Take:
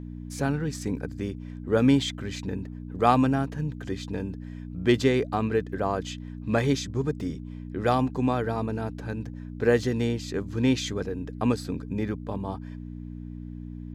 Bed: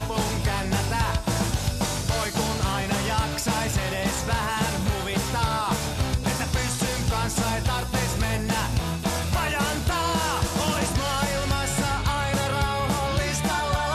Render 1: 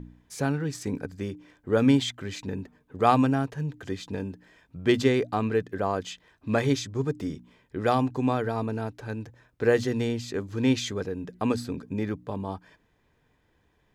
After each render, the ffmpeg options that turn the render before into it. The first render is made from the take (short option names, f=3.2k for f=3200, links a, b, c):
-af "bandreject=f=60:t=h:w=4,bandreject=f=120:t=h:w=4,bandreject=f=180:t=h:w=4,bandreject=f=240:t=h:w=4,bandreject=f=300:t=h:w=4"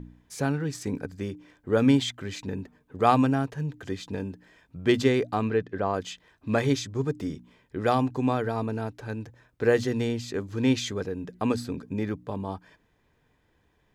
-filter_complex "[0:a]asettb=1/sr,asplit=3[a][b][c];[a]atrim=end=5.504[d];[b]atrim=start=5.5:end=5.94,asetpts=PTS-STARTPTS,afade=t=in:d=0.004:c=qsin,afade=t=out:st=0.436:d=0.004:c=qsin,lowpass=4.5k[e];[c]atrim=start=5.936[f];[d][e]acrossfade=d=0.004:c1=hsin:c2=qsin[g];[g][f]acrossfade=d=0.004:c1=qsin:c2=hsin"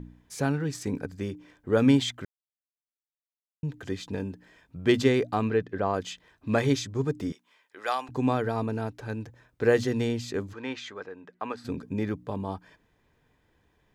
-filter_complex "[0:a]asettb=1/sr,asplit=3[a][b][c];[a]atrim=end=7.324[d];[b]atrim=start=7.32:end=8.09,asetpts=PTS-STARTPTS,afade=t=in:d=0.004:c=qsin,afade=t=out:st=0.766:d=0.004:c=qsin,highpass=890[e];[c]atrim=start=8.086[f];[d][e]acrossfade=d=0.004:c1=hsin:c2=qsin[g];[g][f]acrossfade=d=0.004:c1=qsin:c2=hsin,asplit=3[h][i][j];[h]afade=t=out:st=10.52:d=0.02[k];[i]bandpass=f=1.3k:t=q:w=0.98,afade=t=in:st=10.52:d=0.02,afade=t=out:st=11.64:d=0.02[l];[j]afade=t=in:st=11.64:d=0.02[m];[k][l][m]amix=inputs=3:normalize=0,asplit=3[n][o][p];[n]atrim=end=2.25,asetpts=PTS-STARTPTS,afade=t=out:st=2.246:d=0.004:c=hsin[q];[o]atrim=start=2.25:end=3.63,asetpts=PTS-STARTPTS,volume=0[r];[p]atrim=start=3.63,asetpts=PTS-STARTPTS,afade=t=in:d=0.004:c=hsin[s];[q][r][s]concat=n=3:v=0:a=1"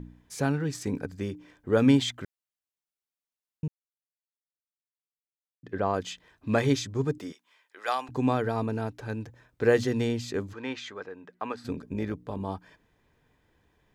-filter_complex "[0:a]asettb=1/sr,asplit=3[a][b][c];[a]atrim=end=7.184[d];[b]atrim=start=7.18:end=7.88,asetpts=PTS-STARTPTS,afade=t=in:d=0.004:c=qsin,afade=t=out:st=0.696:d=0.004:c=qsin,highpass=f=550:p=1[e];[c]atrim=start=7.876[f];[d][e]acrossfade=d=0.004:c1=hsin:c2=qsin[g];[g][f]acrossfade=d=0.004:c1=qsin:c2=hsin,asettb=1/sr,asplit=3[h][i][j];[h]atrim=end=11.734[k];[i]atrim=start=11.73:end=12.41,asetpts=PTS-STARTPTS,afade=t=in:d=0.004:c=qsin,afade=t=out:st=0.676:d=0.004:c=qsin,tremolo=f=160:d=0.462[l];[j]atrim=start=12.406[m];[k][l]acrossfade=d=0.004:c1=hsin:c2=qsin[n];[n][m]acrossfade=d=0.004:c1=qsin:c2=hsin,asplit=3[o][p][q];[o]atrim=end=3.68,asetpts=PTS-STARTPTS,afade=t=out:st=3.676:d=0.004:c=hsin[r];[p]atrim=start=3.68:end=5.63,asetpts=PTS-STARTPTS,volume=0[s];[q]atrim=start=5.63,asetpts=PTS-STARTPTS,afade=t=in:d=0.004:c=hsin[t];[r][s][t]concat=n=3:v=0:a=1"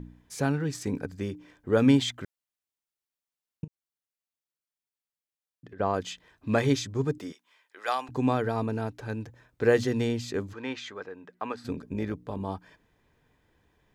-filter_complex "[0:a]asettb=1/sr,asplit=3[a][b][c];[a]atrim=end=3.644[d];[b]atrim=start=3.64:end=5.8,asetpts=PTS-STARTPTS,afade=t=in:d=0.004:c=qsin,afade=t=out:st=2.156:d=0.004:c=qsin,acompressor=threshold=-42dB:ratio=12:attack=3.2:release=140:knee=1:detection=peak[e];[c]atrim=start=5.796[f];[d][e]acrossfade=d=0.004:c1=hsin:c2=qsin[g];[g][f]acrossfade=d=0.004:c1=qsin:c2=hsin"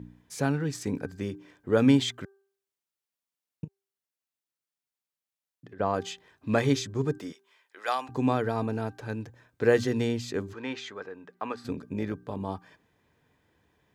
-af "highpass=75,bandreject=f=392.7:t=h:w=4,bandreject=f=785.4:t=h:w=4,bandreject=f=1.1781k:t=h:w=4,bandreject=f=1.5708k:t=h:w=4"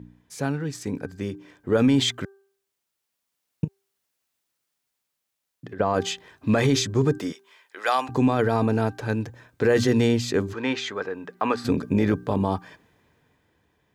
-af "dynaudnorm=f=190:g=17:m=15.5dB,alimiter=limit=-11dB:level=0:latency=1:release=16"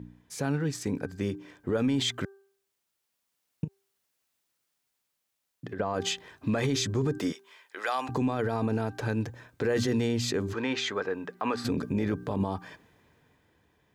-af "alimiter=limit=-19dB:level=0:latency=1:release=86"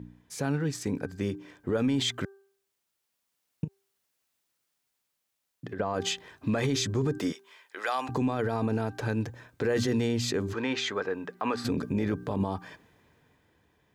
-af anull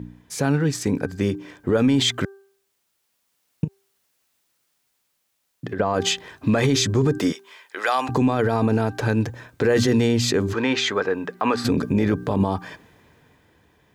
-af "volume=8.5dB"